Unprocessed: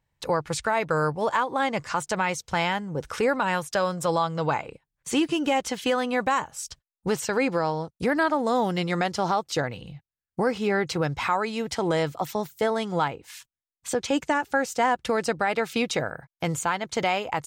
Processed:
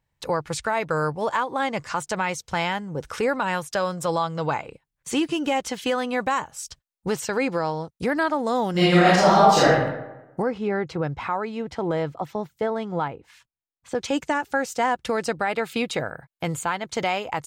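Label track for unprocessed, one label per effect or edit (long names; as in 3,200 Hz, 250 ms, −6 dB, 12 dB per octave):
8.710000	9.680000	thrown reverb, RT60 1 s, DRR −10 dB
10.420000	13.950000	low-pass filter 1,300 Hz 6 dB per octave
15.360000	16.880000	parametric band 5,800 Hz −8 dB 0.31 octaves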